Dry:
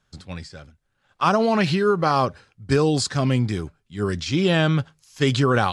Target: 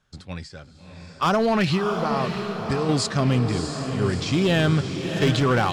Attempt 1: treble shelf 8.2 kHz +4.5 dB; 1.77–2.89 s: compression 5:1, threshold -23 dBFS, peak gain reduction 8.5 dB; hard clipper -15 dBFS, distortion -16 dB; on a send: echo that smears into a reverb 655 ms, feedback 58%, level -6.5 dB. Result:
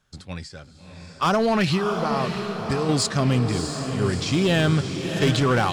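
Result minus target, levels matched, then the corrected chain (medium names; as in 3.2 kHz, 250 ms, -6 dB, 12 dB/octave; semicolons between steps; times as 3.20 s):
8 kHz band +3.0 dB
treble shelf 8.2 kHz -4 dB; 1.77–2.89 s: compression 5:1, threshold -23 dBFS, peak gain reduction 8.5 dB; hard clipper -15 dBFS, distortion -16 dB; on a send: echo that smears into a reverb 655 ms, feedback 58%, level -6.5 dB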